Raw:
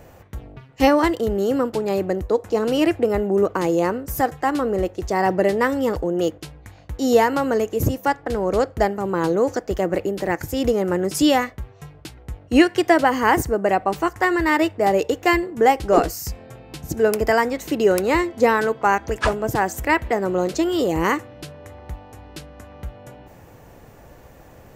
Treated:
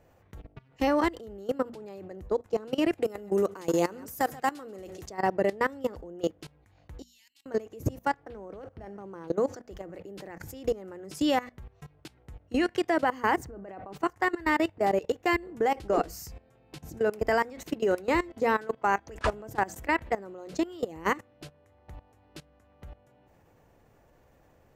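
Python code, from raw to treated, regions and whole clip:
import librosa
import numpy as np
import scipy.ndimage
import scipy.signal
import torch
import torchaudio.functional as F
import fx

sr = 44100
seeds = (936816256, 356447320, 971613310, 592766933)

y = fx.chain(x, sr, fx.highpass(hz=97.0, slope=12),
    fx.high_shelf(hz=3400.0, db=12.0),
    fx.echo_single(ms=136, db=-17.5), at=(2.93, 5.09))
y = fx.chain(y, sr, fx.cheby2_highpass(hz=1400.0, order=4, stop_db=40),
    fx.level_steps(step_db=22), at=(7.02, 7.46))
y = fx.chain(y, sr, fx.over_compress(threshold_db=-22.0, ratio=-0.5),
    fx.resample_linear(factor=6), at=(8.26, 9.28))
y = fx.chain(y, sr, fx.lowpass(hz=2300.0, slope=6),
    fx.over_compress(threshold_db=-24.0, ratio=-1.0), at=(13.44, 13.94))
y = fx.high_shelf(y, sr, hz=6800.0, db=-5.0)
y = fx.hum_notches(y, sr, base_hz=60, count=4)
y = fx.level_steps(y, sr, step_db=19)
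y = y * 10.0 ** (-4.5 / 20.0)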